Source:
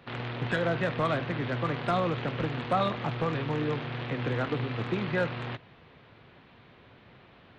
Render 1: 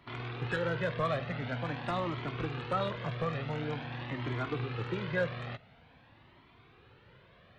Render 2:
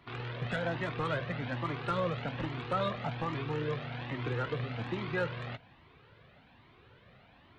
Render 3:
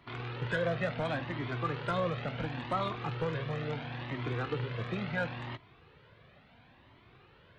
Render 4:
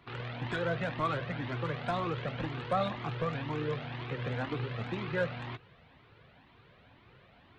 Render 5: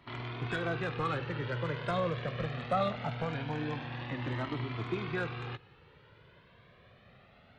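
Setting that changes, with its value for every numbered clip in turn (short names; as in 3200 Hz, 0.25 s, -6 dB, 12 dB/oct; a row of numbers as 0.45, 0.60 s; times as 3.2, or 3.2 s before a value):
cascading flanger, rate: 0.47, 1.2, 0.72, 2, 0.22 Hz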